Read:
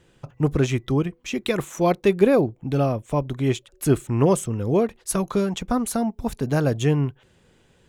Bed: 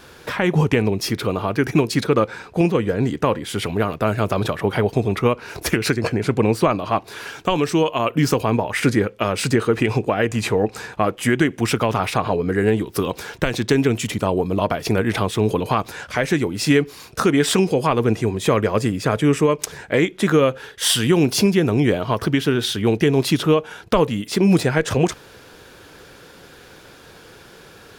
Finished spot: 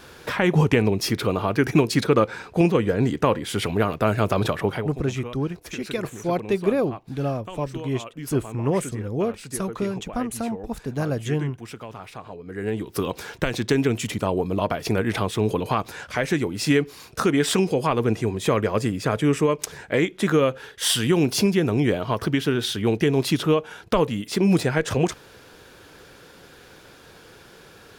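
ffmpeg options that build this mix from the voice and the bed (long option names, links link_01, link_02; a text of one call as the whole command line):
ffmpeg -i stem1.wav -i stem2.wav -filter_complex "[0:a]adelay=4450,volume=-4.5dB[link_01];[1:a]volume=13.5dB,afade=type=out:start_time=4.59:duration=0.31:silence=0.141254,afade=type=in:start_time=12.45:duration=0.58:silence=0.188365[link_02];[link_01][link_02]amix=inputs=2:normalize=0" out.wav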